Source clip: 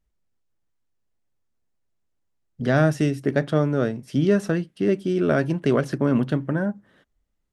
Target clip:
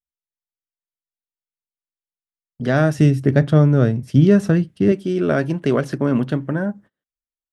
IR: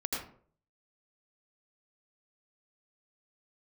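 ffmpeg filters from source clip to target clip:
-filter_complex "[0:a]agate=range=0.0282:threshold=0.00708:ratio=16:detection=peak,asettb=1/sr,asplit=3[s0][s1][s2];[s0]atrim=end=2.984[s3];[s1]atrim=start=2.98:end=4.92,asetpts=PTS-STARTPTS,afade=t=in:d=0.004:c=qsin,afade=t=out:st=1.936:d=0.004:c=qsin,equalizer=f=91:w=0.75:g=14.5[s4];[s2]atrim=start=4.916[s5];[s3][s4]acrossfade=d=0.004:c1=hsin:c2=qsin[s6];[s6][s5]acrossfade=d=0.004:c1=qsin:c2=hsin,volume=1.26"

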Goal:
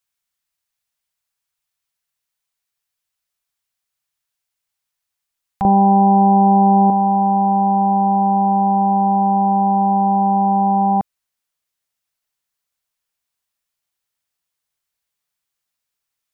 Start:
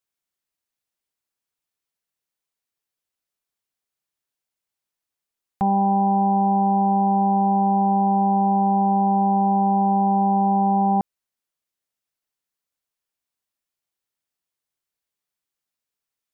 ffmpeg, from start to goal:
-af "asetnsamples=n=441:p=0,asendcmd='5.65 equalizer g 2.5;6.9 equalizer g -7',equalizer=f=330:t=o:w=1.6:g=-12.5,volume=2"

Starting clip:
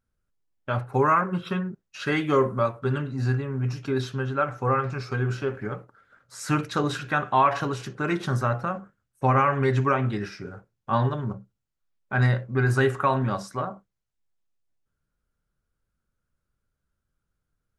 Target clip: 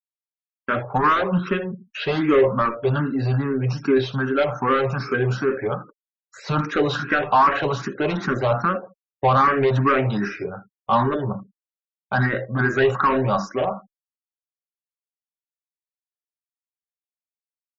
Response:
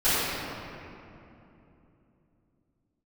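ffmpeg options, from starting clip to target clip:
-filter_complex "[0:a]asplit=2[s0][s1];[s1]volume=14.1,asoftclip=hard,volume=0.0708,volume=0.708[s2];[s0][s2]amix=inputs=2:normalize=0,highpass=190,agate=range=0.0224:threshold=0.0126:ratio=3:detection=peak,highshelf=f=6100:g=8.5,asplit=2[s3][s4];[s4]adelay=79,lowpass=f=4200:p=1,volume=0.15,asplit=2[s5][s6];[s6]adelay=79,lowpass=f=4200:p=1,volume=0.19[s7];[s3][s5][s7]amix=inputs=3:normalize=0,aresample=16000,asoftclip=type=tanh:threshold=0.119,aresample=44100,highshelf=f=2100:g=-4.5,acrossover=split=3800[s8][s9];[s9]acompressor=threshold=0.00316:ratio=4:attack=1:release=60[s10];[s8][s10]amix=inputs=2:normalize=0,afftfilt=real='re*gte(hypot(re,im),0.00447)':imag='im*gte(hypot(re,im),0.00447)':win_size=1024:overlap=0.75,asplit=2[s11][s12];[s12]afreqshift=2.5[s13];[s11][s13]amix=inputs=2:normalize=1,volume=2.82"

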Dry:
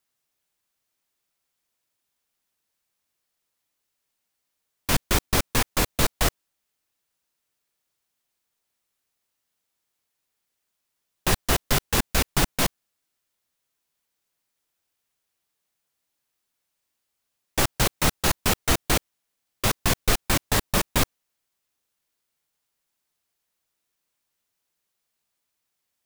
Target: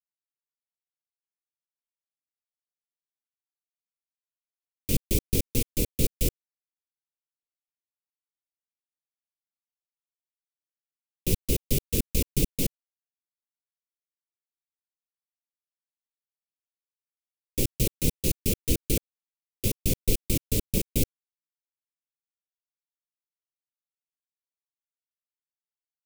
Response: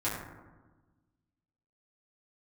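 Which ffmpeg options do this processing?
-af "asuperstop=centerf=1100:order=12:qfactor=0.61,equalizer=f=3500:w=0.53:g=-9,aeval=exprs='sgn(val(0))*max(abs(val(0))-0.0106,0)':c=same"

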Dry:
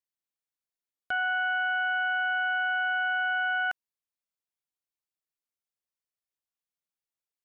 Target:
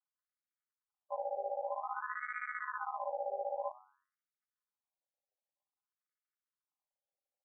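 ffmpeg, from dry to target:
-af "bandreject=f=316.8:t=h:w=4,bandreject=f=633.6:t=h:w=4,bandreject=f=950.4:t=h:w=4,bandreject=f=1267.2:t=h:w=4,bandreject=f=1584:t=h:w=4,bandreject=f=1900.8:t=h:w=4,bandreject=f=2217.6:t=h:w=4,bandreject=f=2534.4:t=h:w=4,bandreject=f=2851.2:t=h:w=4,bandreject=f=3168:t=h:w=4,bandreject=f=3484.8:t=h:w=4,bandreject=f=3801.6:t=h:w=4,bandreject=f=4118.4:t=h:w=4,bandreject=f=4435.2:t=h:w=4,bandreject=f=4752:t=h:w=4,bandreject=f=5068.8:t=h:w=4,bandreject=f=5385.6:t=h:w=4,bandreject=f=5702.4:t=h:w=4,bandreject=f=6019.2:t=h:w=4,bandreject=f=6336:t=h:w=4,bandreject=f=6652.8:t=h:w=4,bandreject=f=6969.6:t=h:w=4,bandreject=f=7286.4:t=h:w=4,bandreject=f=7603.2:t=h:w=4,bandreject=f=7920:t=h:w=4,bandreject=f=8236.8:t=h:w=4,bandreject=f=8553.6:t=h:w=4,bandreject=f=8870.4:t=h:w=4,bandreject=f=9187.2:t=h:w=4,bandreject=f=9504:t=h:w=4,bandreject=f=9820.8:t=h:w=4,bandreject=f=10137.6:t=h:w=4,alimiter=level_in=3.35:limit=0.0631:level=0:latency=1,volume=0.299,aresample=8000,acrusher=samples=35:mix=1:aa=0.000001,aresample=44100,afftfilt=real='re*between(b*sr/1024,600*pow(1700/600,0.5+0.5*sin(2*PI*0.52*pts/sr))/1.41,600*pow(1700/600,0.5+0.5*sin(2*PI*0.52*pts/sr))*1.41)':imag='im*between(b*sr/1024,600*pow(1700/600,0.5+0.5*sin(2*PI*0.52*pts/sr))/1.41,600*pow(1700/600,0.5+0.5*sin(2*PI*0.52*pts/sr))*1.41)':win_size=1024:overlap=0.75,volume=5.62"

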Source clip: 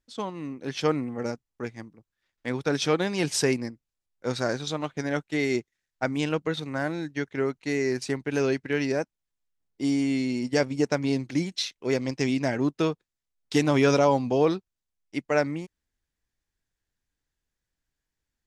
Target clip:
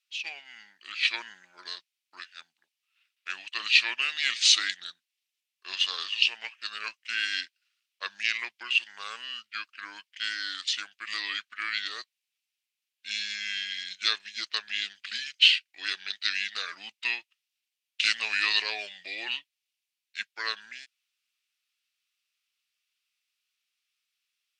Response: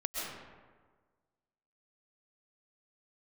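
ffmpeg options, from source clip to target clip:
-af "asetrate=33119,aresample=44100,highpass=f=2600:t=q:w=2.5,volume=1.68"

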